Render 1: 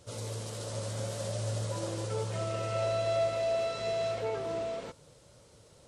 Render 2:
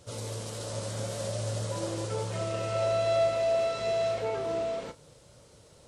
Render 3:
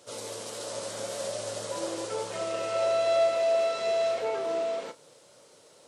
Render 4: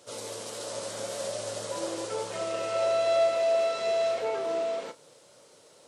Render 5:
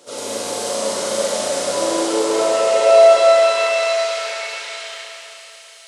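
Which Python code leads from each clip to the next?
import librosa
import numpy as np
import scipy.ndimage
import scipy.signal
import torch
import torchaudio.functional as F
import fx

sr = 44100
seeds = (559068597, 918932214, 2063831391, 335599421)

y1 = fx.doubler(x, sr, ms=33.0, db=-12)
y1 = y1 * 10.0 ** (2.0 / 20.0)
y2 = scipy.signal.sosfilt(scipy.signal.butter(2, 320.0, 'highpass', fs=sr, output='sos'), y1)
y2 = y2 * 10.0 ** (2.0 / 20.0)
y3 = y2
y4 = fx.filter_sweep_highpass(y3, sr, from_hz=210.0, to_hz=2300.0, start_s=1.93, end_s=4.46, q=1.1)
y4 = fx.rev_schroeder(y4, sr, rt60_s=3.5, comb_ms=32, drr_db=-6.5)
y4 = y4 * 10.0 ** (7.0 / 20.0)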